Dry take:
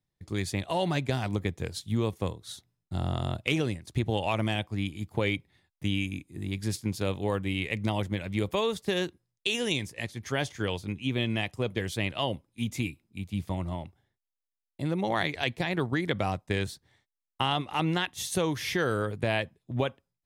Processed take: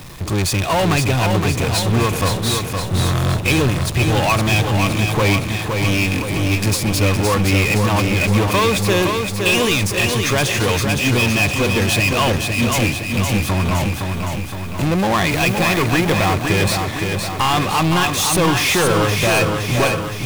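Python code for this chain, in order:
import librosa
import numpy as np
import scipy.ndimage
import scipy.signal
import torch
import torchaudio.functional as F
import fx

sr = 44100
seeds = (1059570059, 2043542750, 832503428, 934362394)

y = fx.small_body(x, sr, hz=(1100.0, 2500.0), ring_ms=20, db=10)
y = fx.power_curve(y, sr, exponent=0.35)
y = fx.quant_dither(y, sr, seeds[0], bits=6, dither='triangular', at=(15.31, 15.82))
y = fx.echo_feedback(y, sr, ms=515, feedback_pct=59, wet_db=-5)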